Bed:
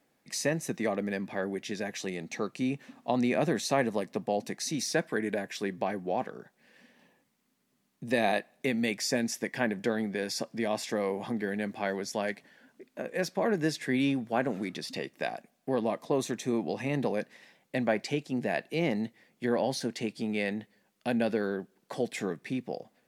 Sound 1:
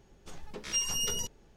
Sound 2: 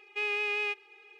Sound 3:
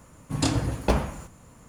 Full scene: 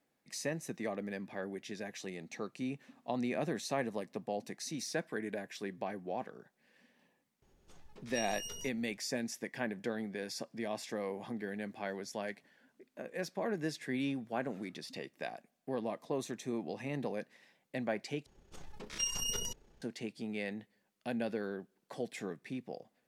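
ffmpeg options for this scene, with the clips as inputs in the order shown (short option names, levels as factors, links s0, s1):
-filter_complex "[1:a]asplit=2[s0][s1];[0:a]volume=0.398[s2];[s0]acompressor=mode=upward:threshold=0.00398:ratio=2.5:attack=3.2:release=140:knee=2.83:detection=peak[s3];[s1]tremolo=f=31:d=0.462[s4];[s2]asplit=2[s5][s6];[s5]atrim=end=18.264[s7];[s4]atrim=end=1.56,asetpts=PTS-STARTPTS,volume=0.75[s8];[s6]atrim=start=19.816[s9];[s3]atrim=end=1.56,asetpts=PTS-STARTPTS,volume=0.237,afade=t=in:d=0.004:c=hsin,afade=t=out:st=1.556:d=0.004:c=hsin,adelay=7420[s10];[s7][s8]acrossfade=d=0.004:c1=hsin:c2=hsin[s11];[s11][s9]acrossfade=d=0.004:c1=hsin:c2=hsin[s12];[s12][s10]amix=inputs=2:normalize=0"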